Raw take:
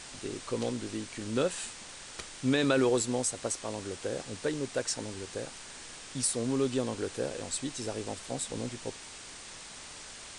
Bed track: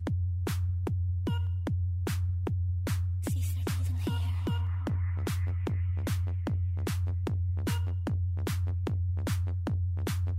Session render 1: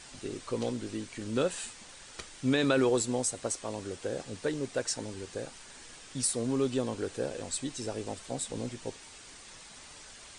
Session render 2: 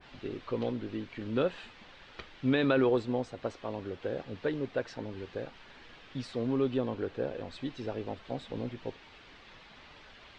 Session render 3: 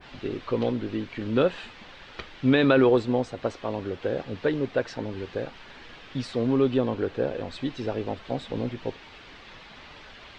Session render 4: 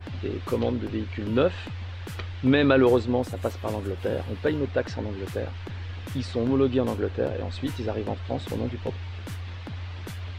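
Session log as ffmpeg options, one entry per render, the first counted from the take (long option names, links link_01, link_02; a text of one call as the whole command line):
ffmpeg -i in.wav -af "afftdn=noise_reduction=6:noise_floor=-47" out.wav
ffmpeg -i in.wav -af "lowpass=frequency=3600:width=0.5412,lowpass=frequency=3600:width=1.3066,adynamicequalizer=threshold=0.00447:dfrequency=1700:dqfactor=0.7:tfrequency=1700:tqfactor=0.7:attack=5:release=100:ratio=0.375:range=2:mode=cutabove:tftype=highshelf" out.wav
ffmpeg -i in.wav -af "volume=7dB" out.wav
ffmpeg -i in.wav -i bed.wav -filter_complex "[1:a]volume=-5.5dB[link_01];[0:a][link_01]amix=inputs=2:normalize=0" out.wav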